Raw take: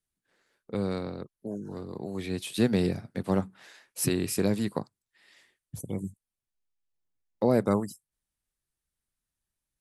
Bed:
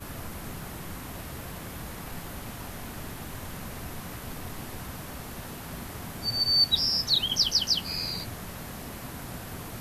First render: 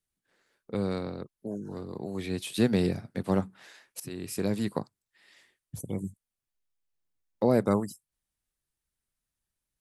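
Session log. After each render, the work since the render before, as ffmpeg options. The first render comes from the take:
-filter_complex "[0:a]asplit=2[a][b];[a]atrim=end=4,asetpts=PTS-STARTPTS,afade=t=out:st=3.996:d=0.004:c=hsin:silence=0.0944061[c];[b]atrim=start=4,asetpts=PTS-STARTPTS,afade=t=in:d=0.69:silence=0.0944061[d];[c][d]concat=n=2:v=0:a=1"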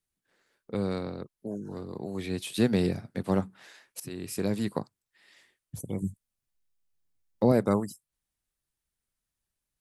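-filter_complex "[0:a]asettb=1/sr,asplit=3[a][b][c];[a]atrim=end=6.024[d];[b]atrim=start=6.02:end=7.52,asetpts=PTS-STARTPTS,afade=t=in:d=0.004:c=qsin,afade=t=out:st=1.496:d=0.004:c=qsin,bass=f=250:g=6,treble=f=4k:g=2[e];[c]atrim=start=7.516[f];[d][e]acrossfade=d=0.004:c1=hsin:c2=qsin[g];[g][f]acrossfade=d=0.004:c1=qsin:c2=hsin"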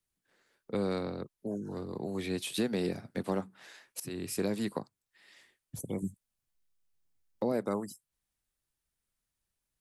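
-filter_complex "[0:a]acrossover=split=190|1400[a][b][c];[a]acompressor=threshold=-43dB:ratio=6[d];[d][b][c]amix=inputs=3:normalize=0,alimiter=limit=-20.5dB:level=0:latency=1:release=359"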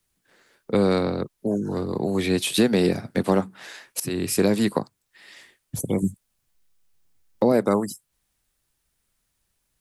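-af "volume=12dB"

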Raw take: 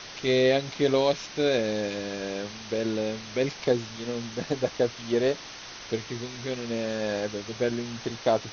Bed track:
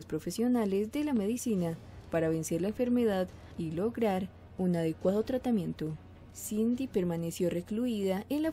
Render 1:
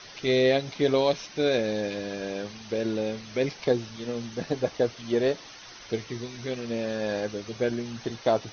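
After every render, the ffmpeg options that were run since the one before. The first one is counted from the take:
-af "afftdn=nr=8:nf=-42"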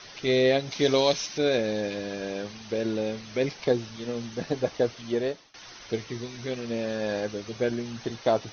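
-filter_complex "[0:a]asettb=1/sr,asplit=3[a][b][c];[a]atrim=end=0.714[d];[b]atrim=start=0.71:end=1.38,asetpts=PTS-STARTPTS,afade=t=in:d=0.004:c=qsin,afade=t=out:st=0.666:d=0.004:c=qsin,aemphasis=mode=production:type=75kf[e];[c]atrim=start=1.376[f];[d][e]acrossfade=d=0.004:c1=hsin:c2=qsin[g];[g][f]acrossfade=d=0.004:c1=qsin:c2=hsin,asplit=2[h][i];[h]atrim=end=5.54,asetpts=PTS-STARTPTS,afade=t=out:st=4.84:d=0.7:c=qsin:silence=0.0749894[j];[i]atrim=start=5.54,asetpts=PTS-STARTPTS,afade=t=in:d=0.004:c=hsin:silence=0.0749894[k];[j][k]concat=n=2:v=0:a=1"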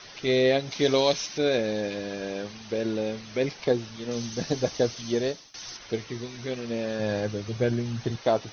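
-filter_complex "[0:a]asettb=1/sr,asplit=3[a][b][c];[a]atrim=end=4.114[d];[b]atrim=start=4.11:end=5.77,asetpts=PTS-STARTPTS,afade=t=in:d=0.004:c=qsin,afade=t=out:st=1.656:d=0.004:c=qsin,bass=f=250:g=4,treble=f=4k:g=12[e];[c]atrim=start=5.766[f];[d][e]acrossfade=d=0.004:c1=hsin:c2=qsin[g];[g][f]acrossfade=d=0.004:c1=qsin:c2=hsin,asettb=1/sr,asplit=3[h][i][j];[h]atrim=end=6.994[k];[i]atrim=start=6.99:end=8.16,asetpts=PTS-STARTPTS,afade=t=in:d=0.004:c=qsin,afade=t=out:st=1.166:d=0.004:c=qsin,equalizer=f=110:w=1.1:g=10.5[l];[j]atrim=start=8.156[m];[k][l]acrossfade=d=0.004:c1=hsin:c2=qsin[n];[n][m]acrossfade=d=0.004:c1=qsin:c2=hsin"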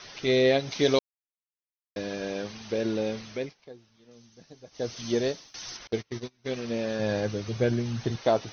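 -filter_complex "[0:a]asettb=1/sr,asplit=3[a][b][c];[a]atrim=end=5.874[d];[b]atrim=start=5.87:end=6.47,asetpts=PTS-STARTPTS,afade=t=in:d=0.004:c=qsin,afade=t=out:st=0.596:d=0.004:c=qsin,agate=range=-28dB:threshold=-36dB:ratio=16:release=100:detection=peak[e];[c]atrim=start=6.466[f];[d][e]acrossfade=d=0.004:c1=hsin:c2=qsin[g];[g][f]acrossfade=d=0.004:c1=qsin:c2=hsin,asplit=5[h][i][j][k][l];[h]atrim=end=0.99,asetpts=PTS-STARTPTS,afade=t=out:st=0.986:d=0.004:c=hsin[m];[i]atrim=start=0.99:end=1.96,asetpts=PTS-STARTPTS,volume=0[n];[j]atrim=start=1.96:end=3.55,asetpts=PTS-STARTPTS,afade=t=in:d=0.004:c=hsin,afade=t=out:st=1.26:d=0.33:silence=0.0749894[o];[k]atrim=start=3.55:end=4.71,asetpts=PTS-STARTPTS,volume=-22.5dB[p];[l]atrim=start=4.71,asetpts=PTS-STARTPTS,afade=t=in:d=0.33:silence=0.0749894[q];[m][n][o][p][q]concat=n=5:v=0:a=1"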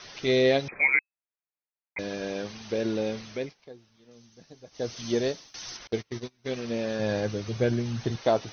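-filter_complex "[0:a]asettb=1/sr,asplit=3[a][b][c];[a]atrim=end=0.684[d];[b]atrim=start=0.68:end=1.99,asetpts=PTS-STARTPTS,afade=t=in:d=0.004:c=qsin,afade=t=out:st=1.306:d=0.004:c=qsin,lowpass=f=2.2k:t=q:w=0.5098,lowpass=f=2.2k:t=q:w=0.6013,lowpass=f=2.2k:t=q:w=0.9,lowpass=f=2.2k:t=q:w=2.563,afreqshift=-2600[e];[c]atrim=start=1.986[f];[d][e]acrossfade=d=0.004:c1=hsin:c2=qsin[g];[g][f]acrossfade=d=0.004:c1=qsin:c2=hsin"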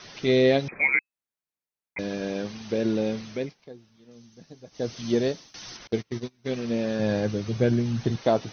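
-filter_complex "[0:a]acrossover=split=5900[a][b];[b]acompressor=threshold=-53dB:ratio=4:attack=1:release=60[c];[a][c]amix=inputs=2:normalize=0,equalizer=f=190:w=0.79:g=6"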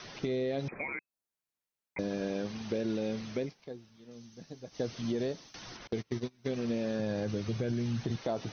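-filter_complex "[0:a]alimiter=limit=-18dB:level=0:latency=1:release=40,acrossover=split=1400|3800[a][b][c];[a]acompressor=threshold=-30dB:ratio=4[d];[b]acompressor=threshold=-52dB:ratio=4[e];[c]acompressor=threshold=-55dB:ratio=4[f];[d][e][f]amix=inputs=3:normalize=0"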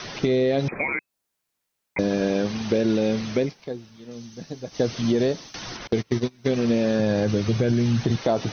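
-af "volume=11.5dB"

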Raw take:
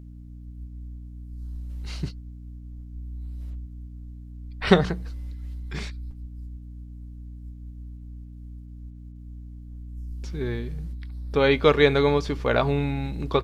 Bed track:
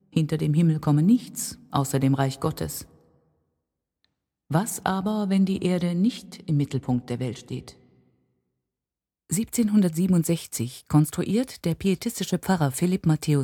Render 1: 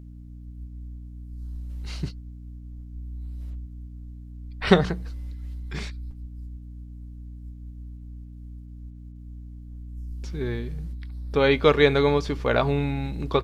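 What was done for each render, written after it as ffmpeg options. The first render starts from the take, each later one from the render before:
-af anull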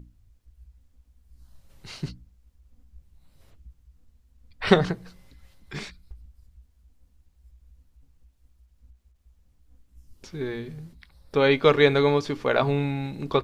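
-af "bandreject=f=60:t=h:w=6,bandreject=f=120:t=h:w=6,bandreject=f=180:t=h:w=6,bandreject=f=240:t=h:w=6,bandreject=f=300:t=h:w=6"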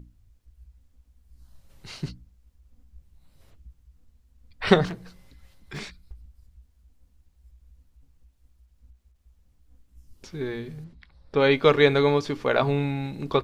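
-filter_complex "[0:a]asettb=1/sr,asplit=3[a][b][c];[a]atrim=end=4.864[d];[b]atrim=start=4.86:end=5.79,asetpts=PTS-STARTPTS,afade=t=in:d=0.004:c=qsin,afade=t=out:st=0.926:d=0.004:c=qsin,asoftclip=type=hard:threshold=-30dB[e];[c]atrim=start=5.786[f];[d][e]acrossfade=d=0.004:c1=hsin:c2=qsin[g];[g][f]acrossfade=d=0.004:c1=qsin:c2=hsin,asettb=1/sr,asplit=3[h][i][j];[h]atrim=end=10.844[k];[i]atrim=start=10.84:end=11.42,asetpts=PTS-STARTPTS,afade=t=in:d=0.004:c=qsin,afade=t=out:st=0.576:d=0.004:c=qsin,adynamicsmooth=sensitivity=1:basefreq=5.1k[l];[j]atrim=start=11.416[m];[k][l]acrossfade=d=0.004:c1=hsin:c2=qsin[n];[n][m]acrossfade=d=0.004:c1=qsin:c2=hsin"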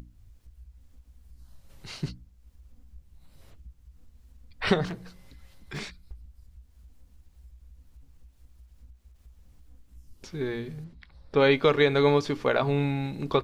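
-af "alimiter=limit=-10.5dB:level=0:latency=1:release=228,acompressor=mode=upward:threshold=-44dB:ratio=2.5"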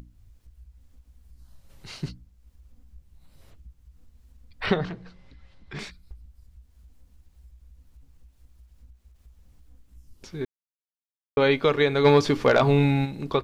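-filter_complex "[0:a]asettb=1/sr,asplit=3[a][b][c];[a]atrim=end=4.664[d];[b]atrim=start=4.66:end=5.79,asetpts=PTS-STARTPTS,afade=t=in:d=0.004:c=qsin,afade=t=out:st=1.126:d=0.004:c=qsin,lowpass=4k[e];[c]atrim=start=5.786[f];[d][e]acrossfade=d=0.004:c1=hsin:c2=qsin[g];[g][f]acrossfade=d=0.004:c1=qsin:c2=hsin,asplit=3[h][i][j];[h]afade=t=out:st=12.04:d=0.02[k];[i]aeval=exprs='0.316*sin(PI/2*1.41*val(0)/0.316)':c=same,afade=t=in:st=12.04:d=0.02,afade=t=out:st=13.04:d=0.02[l];[j]afade=t=in:st=13.04:d=0.02[m];[k][l][m]amix=inputs=3:normalize=0,asplit=3[n][o][p];[n]atrim=end=10.45,asetpts=PTS-STARTPTS,afade=t=out:st=10.446:d=0.004:c=hsin[q];[o]atrim=start=10.45:end=11.37,asetpts=PTS-STARTPTS,volume=0[r];[p]atrim=start=11.37,asetpts=PTS-STARTPTS,afade=t=in:d=0.004:c=hsin[s];[q][r][s]concat=n=3:v=0:a=1"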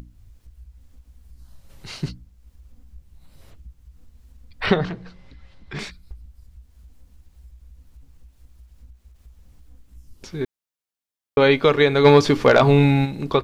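-af "volume=5dB"

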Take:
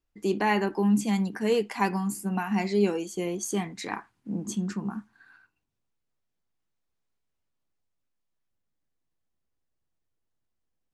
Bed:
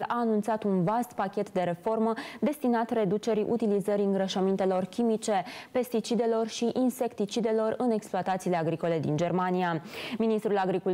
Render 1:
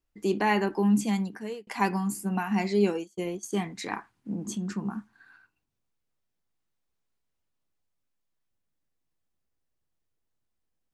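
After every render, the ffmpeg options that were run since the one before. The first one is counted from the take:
-filter_complex "[0:a]asplit=3[a][b][c];[a]afade=t=out:st=2.87:d=0.02[d];[b]agate=range=-33dB:threshold=-28dB:ratio=3:release=100:detection=peak,afade=t=in:st=2.87:d=0.02,afade=t=out:st=3.52:d=0.02[e];[c]afade=t=in:st=3.52:d=0.02[f];[d][e][f]amix=inputs=3:normalize=0,asettb=1/sr,asplit=3[g][h][i];[g]atrim=end=4.334[j];[h]atrim=start=4.33:end=4.76,asetpts=PTS-STARTPTS,afade=t=in:d=0.004:c=qsin,afade=t=out:st=0.426:d=0.004:c=qsin,acompressor=threshold=-30dB:ratio=2:attack=3.2:release=140:knee=1:detection=peak[k];[i]atrim=start=4.756[l];[j][k]acrossfade=d=0.004:c1=hsin:c2=qsin[m];[m][l]acrossfade=d=0.004:c1=qsin:c2=hsin,asplit=2[n][o];[n]atrim=end=1.67,asetpts=PTS-STARTPTS,afade=t=out:st=1.05:d=0.62[p];[o]atrim=start=1.67,asetpts=PTS-STARTPTS,afade=t=in:d=0.004:c=hsin[q];[p][q]concat=n=2:v=0:a=1"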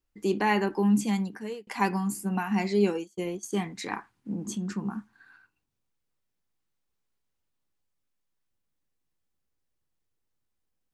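-af "bandreject=f=660:w=12"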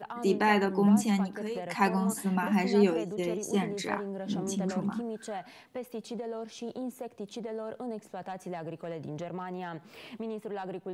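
-filter_complex "[1:a]volume=-10.5dB[a];[0:a][a]amix=inputs=2:normalize=0"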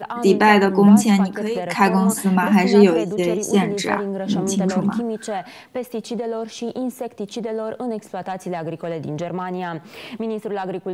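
-af "volume=11.5dB,alimiter=limit=-2dB:level=0:latency=1"

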